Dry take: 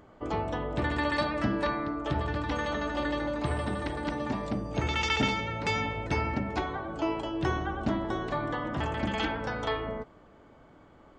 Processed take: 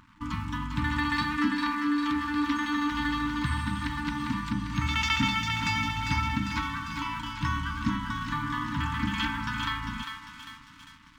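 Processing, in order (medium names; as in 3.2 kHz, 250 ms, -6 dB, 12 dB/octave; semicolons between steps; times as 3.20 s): 1.37–2.92 s: resonant low shelf 210 Hz -12 dB, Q 3; in parallel at +2.5 dB: compression, threshold -38 dBFS, peak gain reduction 15 dB; on the sum: thinning echo 399 ms, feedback 63%, high-pass 890 Hz, level -5 dB; crossover distortion -48 dBFS; FFT band-reject 310–880 Hz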